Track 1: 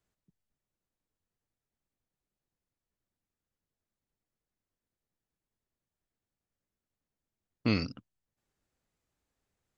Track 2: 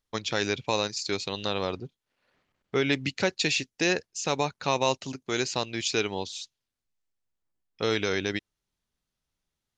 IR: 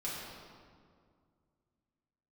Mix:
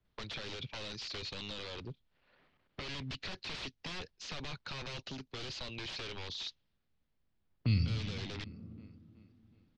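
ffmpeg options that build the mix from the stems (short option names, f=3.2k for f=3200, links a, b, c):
-filter_complex "[0:a]lowshelf=f=210:g=12,volume=-2dB,asplit=3[a][b][c];[b]volume=-10dB[d];[c]volume=-22dB[e];[1:a]highpass=f=110:p=1,alimiter=limit=-17.5dB:level=0:latency=1:release=40,aeval=exprs='0.0224*(abs(mod(val(0)/0.0224+3,4)-2)-1)':c=same,adelay=50,volume=2.5dB[f];[2:a]atrim=start_sample=2205[g];[d][g]afir=irnorm=-1:irlink=0[h];[e]aecho=0:1:372|744|1116|1488|1860|2232|2604:1|0.49|0.24|0.118|0.0576|0.0282|0.0138[i];[a][f][h][i]amix=inputs=4:normalize=0,lowpass=f=4.3k:w=0.5412,lowpass=f=4.3k:w=1.3066,acrossover=split=140|3000[j][k][l];[k]acompressor=threshold=-45dB:ratio=6[m];[j][m][l]amix=inputs=3:normalize=0"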